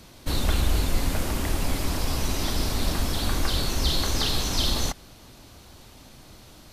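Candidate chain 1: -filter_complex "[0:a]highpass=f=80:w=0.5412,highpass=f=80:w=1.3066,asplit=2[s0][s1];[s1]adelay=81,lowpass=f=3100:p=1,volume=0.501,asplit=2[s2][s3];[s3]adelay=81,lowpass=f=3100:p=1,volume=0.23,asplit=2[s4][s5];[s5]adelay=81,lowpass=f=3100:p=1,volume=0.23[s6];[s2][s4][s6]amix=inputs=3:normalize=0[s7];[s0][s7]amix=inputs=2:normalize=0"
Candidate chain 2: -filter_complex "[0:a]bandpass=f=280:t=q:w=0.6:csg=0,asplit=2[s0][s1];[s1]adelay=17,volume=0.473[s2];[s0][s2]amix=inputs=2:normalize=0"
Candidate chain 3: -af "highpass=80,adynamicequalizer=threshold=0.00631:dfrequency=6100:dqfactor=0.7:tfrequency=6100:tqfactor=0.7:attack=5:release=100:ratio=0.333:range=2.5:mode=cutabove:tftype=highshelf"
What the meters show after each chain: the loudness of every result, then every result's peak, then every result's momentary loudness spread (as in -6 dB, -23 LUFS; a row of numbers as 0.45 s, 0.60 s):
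-27.0 LUFS, -33.0 LUFS, -28.5 LUFS; -14.0 dBFS, -18.0 dBFS, -13.5 dBFS; 4 LU, 4 LU, 4 LU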